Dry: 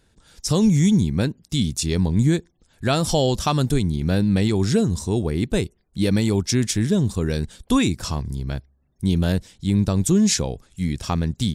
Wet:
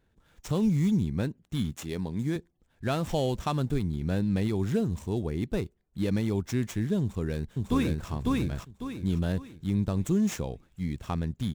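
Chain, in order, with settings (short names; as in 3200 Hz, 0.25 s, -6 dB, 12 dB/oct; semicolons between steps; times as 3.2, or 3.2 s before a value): median filter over 9 samples; 1.72–2.36 HPF 230 Hz 6 dB/oct; 7.01–8.09 echo throw 0.55 s, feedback 35%, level -1 dB; gain -8 dB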